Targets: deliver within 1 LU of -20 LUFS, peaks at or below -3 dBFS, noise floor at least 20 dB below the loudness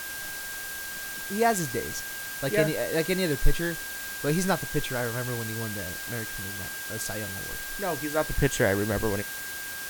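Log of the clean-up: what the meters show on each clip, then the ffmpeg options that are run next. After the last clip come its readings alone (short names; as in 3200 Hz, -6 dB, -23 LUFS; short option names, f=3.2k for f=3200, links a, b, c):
steady tone 1600 Hz; tone level -37 dBFS; noise floor -36 dBFS; noise floor target -49 dBFS; loudness -29.0 LUFS; peak -8.0 dBFS; loudness target -20.0 LUFS
-> -af "bandreject=f=1.6k:w=30"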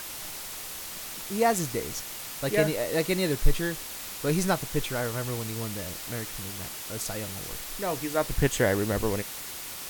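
steady tone none; noise floor -39 dBFS; noise floor target -50 dBFS
-> -af "afftdn=nr=11:nf=-39"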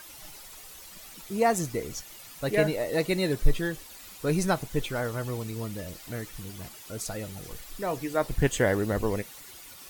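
noise floor -47 dBFS; noise floor target -50 dBFS
-> -af "afftdn=nr=6:nf=-47"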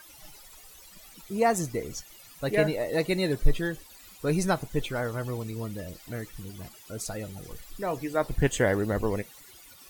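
noise floor -51 dBFS; loudness -29.5 LUFS; peak -8.5 dBFS; loudness target -20.0 LUFS
-> -af "volume=9.5dB,alimiter=limit=-3dB:level=0:latency=1"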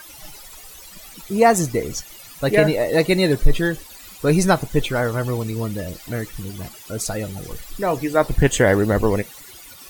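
loudness -20.5 LUFS; peak -3.0 dBFS; noise floor -42 dBFS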